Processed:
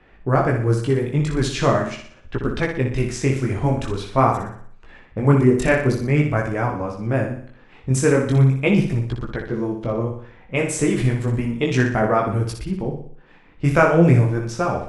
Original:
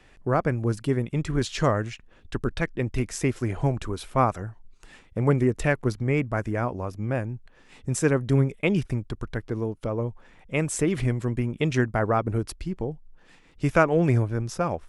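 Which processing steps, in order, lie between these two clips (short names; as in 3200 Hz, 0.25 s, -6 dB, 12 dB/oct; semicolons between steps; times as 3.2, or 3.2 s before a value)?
low-pass opened by the level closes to 2100 Hz, open at -21.5 dBFS; chorus voices 2, 0.44 Hz, delay 19 ms, depth 4.9 ms; flutter echo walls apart 10.3 m, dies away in 0.56 s; gain +7.5 dB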